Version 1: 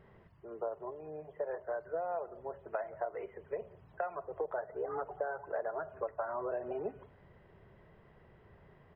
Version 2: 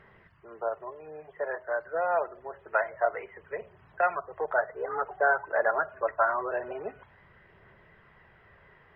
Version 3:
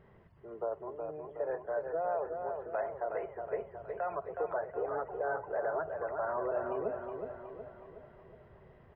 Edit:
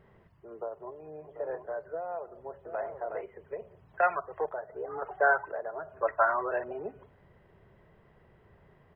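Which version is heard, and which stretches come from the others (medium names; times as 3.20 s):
1
1.31–1.76 s: from 3, crossfade 0.24 s
2.65–3.21 s: from 3
3.94–4.49 s: from 2
5.02–5.51 s: from 2
6.01–6.64 s: from 2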